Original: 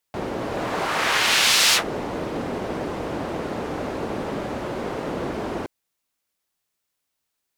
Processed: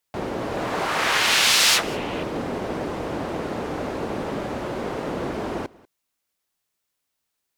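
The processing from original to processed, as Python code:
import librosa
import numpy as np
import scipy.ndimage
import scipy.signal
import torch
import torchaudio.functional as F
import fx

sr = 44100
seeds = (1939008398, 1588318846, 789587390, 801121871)

p1 = fx.peak_eq(x, sr, hz=2800.0, db=11.0, octaves=0.77, at=(1.83, 2.23))
y = p1 + fx.echo_single(p1, sr, ms=191, db=-23.0, dry=0)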